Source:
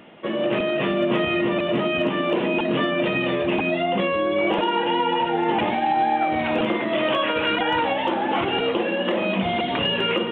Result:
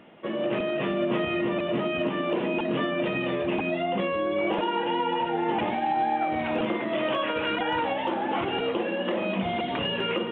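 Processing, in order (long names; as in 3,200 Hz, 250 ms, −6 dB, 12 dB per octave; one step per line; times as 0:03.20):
high-shelf EQ 3,700 Hz −6.5 dB
level −4.5 dB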